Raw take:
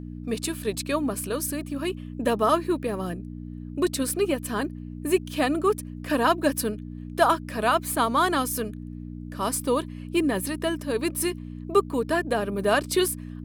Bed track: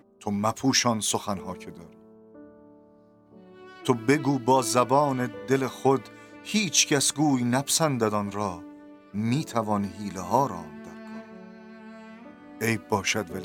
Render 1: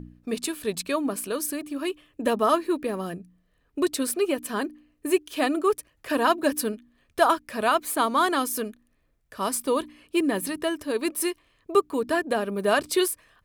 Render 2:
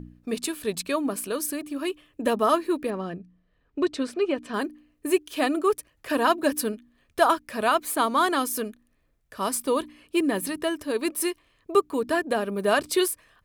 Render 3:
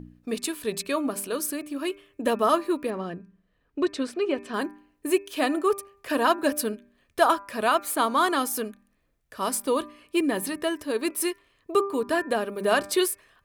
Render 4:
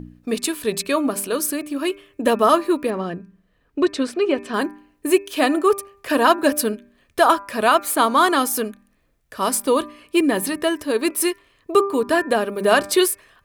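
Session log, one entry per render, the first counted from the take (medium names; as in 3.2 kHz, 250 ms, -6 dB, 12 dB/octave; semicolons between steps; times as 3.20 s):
de-hum 60 Hz, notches 5
2.90–4.54 s: distance through air 130 m
bass shelf 130 Hz -4 dB; de-hum 198.8 Hz, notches 13
trim +6.5 dB; peak limiter -3 dBFS, peak gain reduction 3 dB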